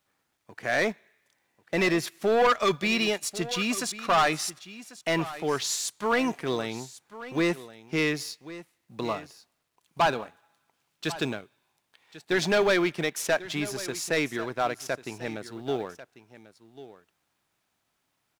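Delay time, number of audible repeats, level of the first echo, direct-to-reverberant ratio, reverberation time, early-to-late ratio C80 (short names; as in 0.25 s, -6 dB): 1.093 s, 1, -16.0 dB, none, none, none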